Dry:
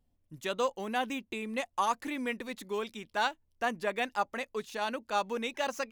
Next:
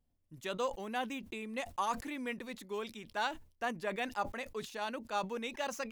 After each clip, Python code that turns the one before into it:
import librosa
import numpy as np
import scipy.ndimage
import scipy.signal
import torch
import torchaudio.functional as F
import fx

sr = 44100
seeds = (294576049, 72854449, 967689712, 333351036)

y = fx.sustainer(x, sr, db_per_s=140.0)
y = y * 10.0 ** (-5.0 / 20.0)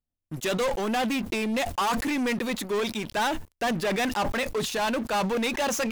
y = fx.leveller(x, sr, passes=5)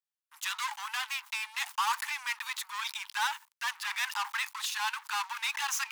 y = scipy.signal.sosfilt(scipy.signal.butter(16, 870.0, 'highpass', fs=sr, output='sos'), x)
y = y * 10.0 ** (-2.0 / 20.0)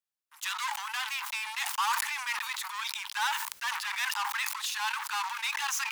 y = fx.sustainer(x, sr, db_per_s=44.0)